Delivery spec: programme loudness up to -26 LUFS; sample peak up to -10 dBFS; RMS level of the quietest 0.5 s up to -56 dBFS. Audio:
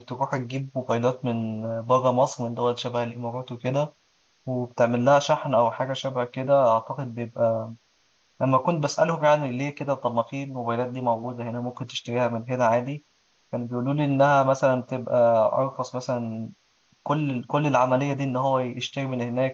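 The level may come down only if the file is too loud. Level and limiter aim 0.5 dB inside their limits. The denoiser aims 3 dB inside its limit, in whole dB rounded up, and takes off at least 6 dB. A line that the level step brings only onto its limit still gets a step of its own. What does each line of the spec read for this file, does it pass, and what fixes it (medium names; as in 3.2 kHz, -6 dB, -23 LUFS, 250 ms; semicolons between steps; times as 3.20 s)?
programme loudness -25.0 LUFS: fail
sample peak -7.0 dBFS: fail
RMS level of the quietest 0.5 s -65 dBFS: pass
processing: trim -1.5 dB; peak limiter -10.5 dBFS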